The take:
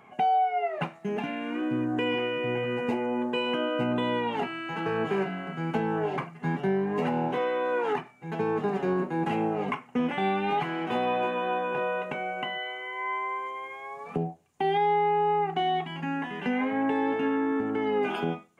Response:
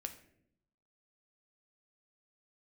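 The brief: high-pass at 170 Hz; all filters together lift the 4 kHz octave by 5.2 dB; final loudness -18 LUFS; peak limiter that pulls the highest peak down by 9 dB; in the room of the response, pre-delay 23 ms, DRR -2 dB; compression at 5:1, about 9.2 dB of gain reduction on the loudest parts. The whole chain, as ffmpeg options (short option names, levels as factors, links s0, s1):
-filter_complex "[0:a]highpass=170,equalizer=f=4000:t=o:g=8.5,acompressor=threshold=0.0251:ratio=5,alimiter=level_in=1.68:limit=0.0631:level=0:latency=1,volume=0.596,asplit=2[s0][s1];[1:a]atrim=start_sample=2205,adelay=23[s2];[s1][s2]afir=irnorm=-1:irlink=0,volume=1.68[s3];[s0][s3]amix=inputs=2:normalize=0,volume=5.31"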